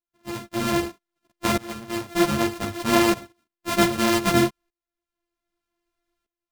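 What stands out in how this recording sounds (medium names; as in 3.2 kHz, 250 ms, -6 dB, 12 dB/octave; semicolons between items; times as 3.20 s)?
a buzz of ramps at a fixed pitch in blocks of 128 samples; tremolo saw up 0.64 Hz, depth 90%; a shimmering, thickened sound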